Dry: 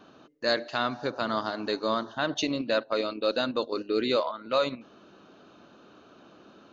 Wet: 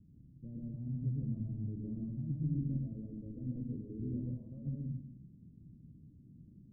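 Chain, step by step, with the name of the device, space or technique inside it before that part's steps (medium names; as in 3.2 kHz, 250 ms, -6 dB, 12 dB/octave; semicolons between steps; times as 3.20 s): club heard from the street (peak limiter -18 dBFS, peak gain reduction 5 dB; low-pass 140 Hz 24 dB/octave; reverberation RT60 0.70 s, pre-delay 107 ms, DRR -1.5 dB); trim +10 dB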